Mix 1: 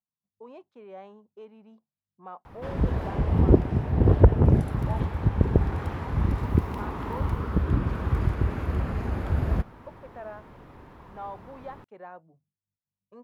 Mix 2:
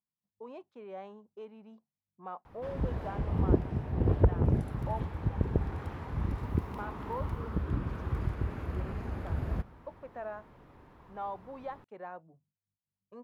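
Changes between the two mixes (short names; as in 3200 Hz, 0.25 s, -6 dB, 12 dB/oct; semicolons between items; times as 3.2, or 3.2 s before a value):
background -10.0 dB; reverb: on, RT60 1.4 s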